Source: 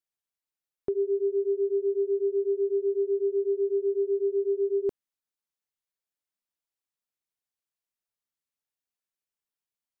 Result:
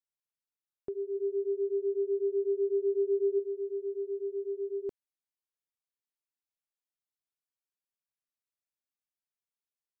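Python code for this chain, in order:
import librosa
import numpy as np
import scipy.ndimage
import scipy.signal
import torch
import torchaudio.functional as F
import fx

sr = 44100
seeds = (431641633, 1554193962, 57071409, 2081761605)

y = fx.peak_eq(x, sr, hz=fx.line((1.14, 140.0), (3.38, 250.0)), db=10.0, octaves=2.2, at=(1.14, 3.38), fade=0.02)
y = y * 10.0 ** (-8.5 / 20.0)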